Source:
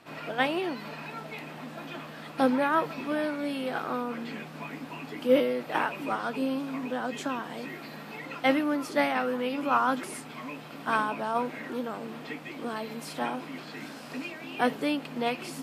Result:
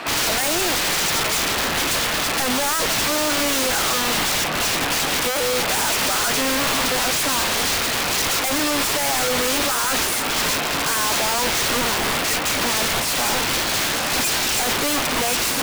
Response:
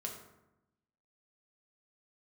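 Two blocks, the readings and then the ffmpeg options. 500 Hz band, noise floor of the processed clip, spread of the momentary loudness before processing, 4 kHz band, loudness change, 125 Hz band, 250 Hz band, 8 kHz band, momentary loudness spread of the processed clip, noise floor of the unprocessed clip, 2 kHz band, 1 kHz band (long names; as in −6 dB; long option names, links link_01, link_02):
+5.0 dB, −23 dBFS, 14 LU, +21.5 dB, +12.0 dB, +12.0 dB, +3.0 dB, +30.0 dB, 1 LU, −43 dBFS, +12.5 dB, +7.5 dB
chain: -filter_complex "[0:a]asplit=2[link_01][link_02];[link_02]highpass=frequency=720:poles=1,volume=34dB,asoftclip=type=tanh:threshold=-10dB[link_03];[link_01][link_03]amix=inputs=2:normalize=0,lowpass=frequency=4200:poles=1,volume=-6dB,aeval=exprs='(mod(7.5*val(0)+1,2)-1)/7.5':channel_layout=same"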